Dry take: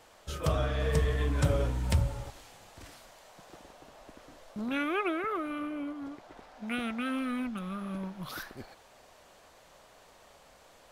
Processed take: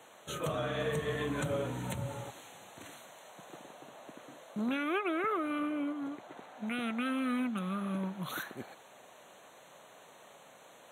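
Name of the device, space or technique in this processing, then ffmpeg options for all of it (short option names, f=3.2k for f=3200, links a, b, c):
PA system with an anti-feedback notch: -af "highpass=f=130:w=0.5412,highpass=f=130:w=1.3066,asuperstop=centerf=5000:order=12:qfactor=3,alimiter=level_in=2.5dB:limit=-24dB:level=0:latency=1:release=202,volume=-2.5dB,volume=2dB"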